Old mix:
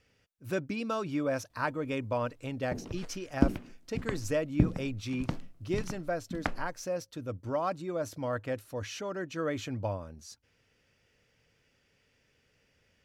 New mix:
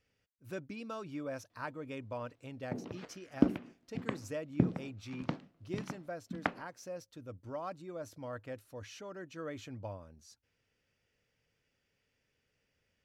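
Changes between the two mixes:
speech −9.5 dB
background: add band-pass filter 160–3,900 Hz

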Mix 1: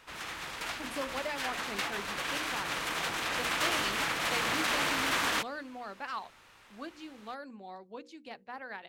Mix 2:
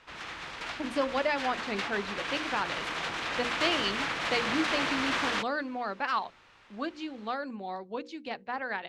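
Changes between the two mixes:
speech +8.5 dB
master: add low-pass filter 5,200 Hz 12 dB per octave

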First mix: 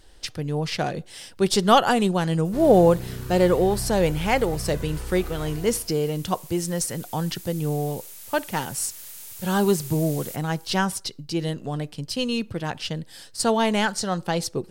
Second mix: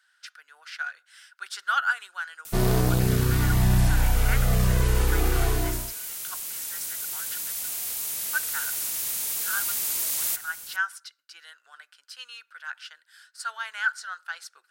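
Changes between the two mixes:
speech: add four-pole ladder high-pass 1,400 Hz, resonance 85%
background +11.5 dB

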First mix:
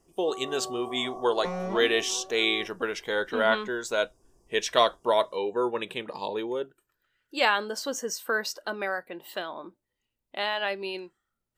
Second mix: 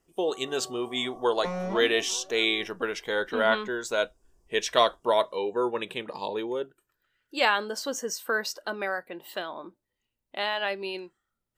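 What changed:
first sound −9.0 dB
reverb: on, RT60 0.70 s

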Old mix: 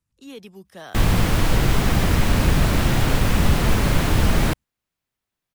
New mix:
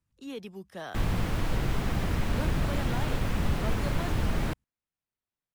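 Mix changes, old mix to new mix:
background −10.0 dB
master: add high-shelf EQ 3,800 Hz −6 dB

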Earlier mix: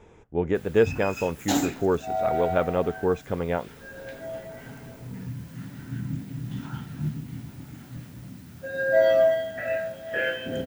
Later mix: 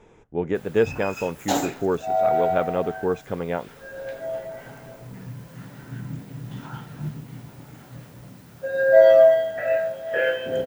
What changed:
background: add octave-band graphic EQ 250/500/1,000 Hz −6/+8/+4 dB
master: add parametric band 79 Hz −14 dB 0.28 octaves

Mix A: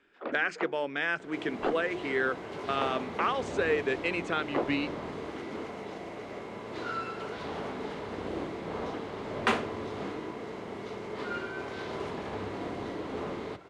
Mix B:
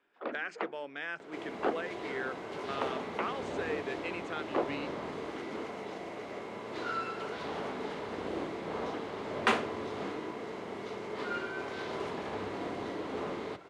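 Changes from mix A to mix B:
speech −8.5 dB
master: add low-shelf EQ 130 Hz −9 dB

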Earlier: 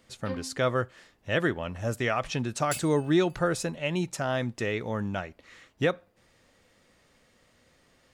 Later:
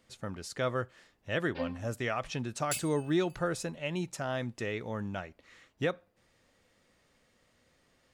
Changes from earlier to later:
speech −5.5 dB
first sound: entry +1.30 s

